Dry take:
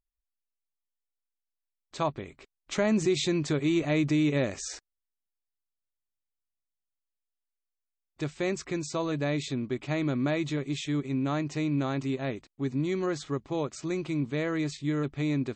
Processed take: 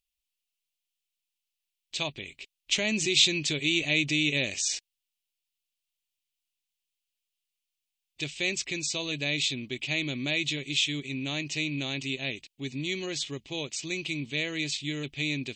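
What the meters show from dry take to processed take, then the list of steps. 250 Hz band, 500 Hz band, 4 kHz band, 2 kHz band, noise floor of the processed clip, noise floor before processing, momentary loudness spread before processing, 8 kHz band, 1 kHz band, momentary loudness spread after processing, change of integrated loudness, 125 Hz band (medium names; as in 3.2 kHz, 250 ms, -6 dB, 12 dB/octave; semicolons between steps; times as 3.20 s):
-6.0 dB, -6.5 dB, +12.5 dB, +8.0 dB, under -85 dBFS, under -85 dBFS, 9 LU, +8.5 dB, -10.0 dB, 11 LU, +1.0 dB, -5.5 dB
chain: resonant high shelf 1.9 kHz +13 dB, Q 3; trim -5.5 dB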